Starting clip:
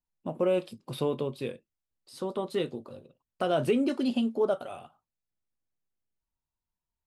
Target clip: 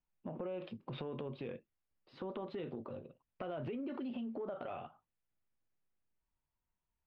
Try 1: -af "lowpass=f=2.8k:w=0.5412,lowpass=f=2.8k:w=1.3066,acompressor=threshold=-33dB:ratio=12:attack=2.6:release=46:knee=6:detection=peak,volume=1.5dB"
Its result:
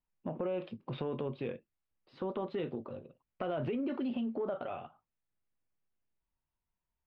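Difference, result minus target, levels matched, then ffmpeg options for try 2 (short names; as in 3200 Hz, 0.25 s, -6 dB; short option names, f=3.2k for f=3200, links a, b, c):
compressor: peak gain reduction -6.5 dB
-af "lowpass=f=2.8k:w=0.5412,lowpass=f=2.8k:w=1.3066,acompressor=threshold=-40dB:ratio=12:attack=2.6:release=46:knee=6:detection=peak,volume=1.5dB"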